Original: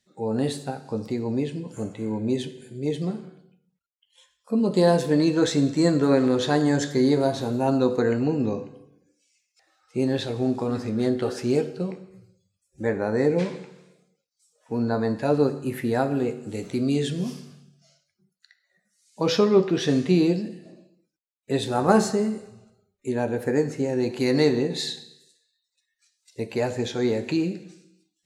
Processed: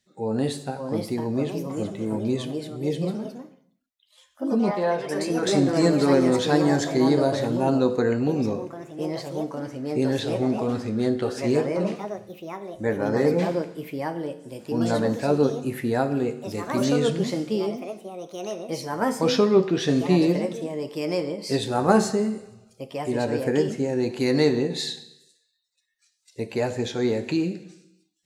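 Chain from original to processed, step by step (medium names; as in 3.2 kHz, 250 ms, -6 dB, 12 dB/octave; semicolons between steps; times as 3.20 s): 4.71–5.47 s: three-band isolator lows -13 dB, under 560 Hz, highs -22 dB, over 2.7 kHz; ever faster or slower copies 611 ms, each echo +3 st, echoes 2, each echo -6 dB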